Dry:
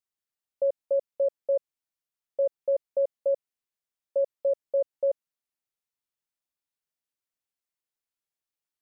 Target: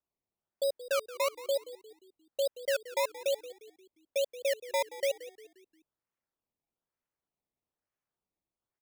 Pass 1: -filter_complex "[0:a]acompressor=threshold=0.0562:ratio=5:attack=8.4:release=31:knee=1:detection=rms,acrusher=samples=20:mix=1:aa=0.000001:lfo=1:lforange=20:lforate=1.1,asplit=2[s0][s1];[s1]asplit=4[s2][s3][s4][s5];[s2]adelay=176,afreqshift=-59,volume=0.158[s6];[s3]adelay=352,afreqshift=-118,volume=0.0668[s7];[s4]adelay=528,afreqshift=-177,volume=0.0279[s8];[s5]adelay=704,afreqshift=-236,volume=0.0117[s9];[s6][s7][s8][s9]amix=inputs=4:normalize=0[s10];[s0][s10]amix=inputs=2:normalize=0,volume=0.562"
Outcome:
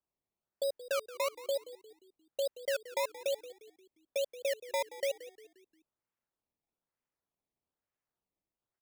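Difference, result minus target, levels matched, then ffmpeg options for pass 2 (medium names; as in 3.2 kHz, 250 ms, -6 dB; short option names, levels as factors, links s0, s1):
compression: peak gain reduction +3 dB
-filter_complex "[0:a]acrusher=samples=20:mix=1:aa=0.000001:lfo=1:lforange=20:lforate=1.1,asplit=2[s0][s1];[s1]asplit=4[s2][s3][s4][s5];[s2]adelay=176,afreqshift=-59,volume=0.158[s6];[s3]adelay=352,afreqshift=-118,volume=0.0668[s7];[s4]adelay=528,afreqshift=-177,volume=0.0279[s8];[s5]adelay=704,afreqshift=-236,volume=0.0117[s9];[s6][s7][s8][s9]amix=inputs=4:normalize=0[s10];[s0][s10]amix=inputs=2:normalize=0,volume=0.562"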